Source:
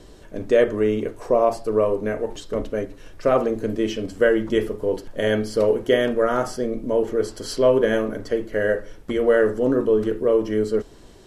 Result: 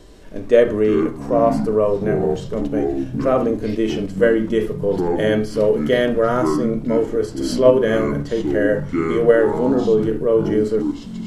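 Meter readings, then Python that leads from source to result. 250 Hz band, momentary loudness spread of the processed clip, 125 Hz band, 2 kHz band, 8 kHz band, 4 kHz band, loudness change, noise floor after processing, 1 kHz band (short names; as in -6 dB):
+6.0 dB, 7 LU, +7.5 dB, +1.0 dB, n/a, +1.0 dB, +3.5 dB, -32 dBFS, +3.0 dB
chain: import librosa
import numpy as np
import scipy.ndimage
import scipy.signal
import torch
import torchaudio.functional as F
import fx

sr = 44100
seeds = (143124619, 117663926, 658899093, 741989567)

p1 = fx.echo_pitch(x, sr, ms=105, semitones=-7, count=3, db_per_echo=-6.0)
p2 = fx.level_steps(p1, sr, step_db=14)
p3 = p1 + (p2 * 10.0 ** (0.0 / 20.0))
p4 = fx.hpss(p3, sr, part='percussive', gain_db=-7)
y = p4 * 10.0 ** (1.0 / 20.0)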